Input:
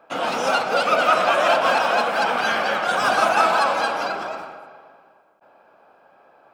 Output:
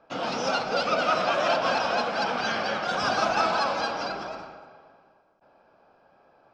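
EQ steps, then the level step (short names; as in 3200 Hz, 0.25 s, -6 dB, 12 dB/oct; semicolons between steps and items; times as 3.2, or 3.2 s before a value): ladder low-pass 6000 Hz, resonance 55%; low shelf 120 Hz +11.5 dB; low shelf 500 Hz +5.5 dB; +1.5 dB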